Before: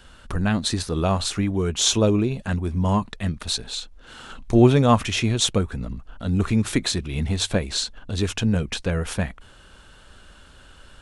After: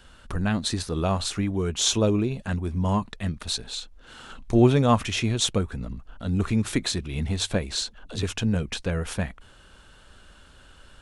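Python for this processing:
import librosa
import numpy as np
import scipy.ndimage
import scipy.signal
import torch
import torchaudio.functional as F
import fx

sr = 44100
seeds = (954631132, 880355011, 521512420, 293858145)

y = fx.dispersion(x, sr, late='lows', ms=67.0, hz=300.0, at=(7.75, 8.23))
y = F.gain(torch.from_numpy(y), -3.0).numpy()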